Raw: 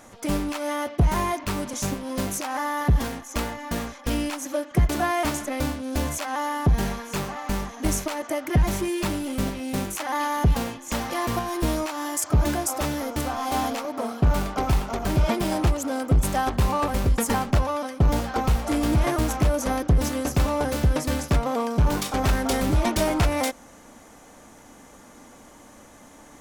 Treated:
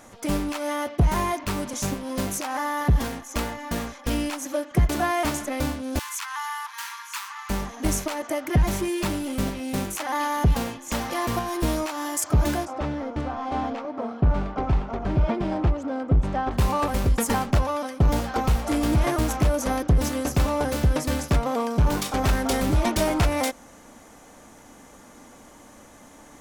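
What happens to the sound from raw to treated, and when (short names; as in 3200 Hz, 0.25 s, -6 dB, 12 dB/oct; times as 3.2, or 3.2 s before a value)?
5.99–7.5 steep high-pass 900 Hz 96 dB/oct
12.65–16.51 tape spacing loss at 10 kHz 29 dB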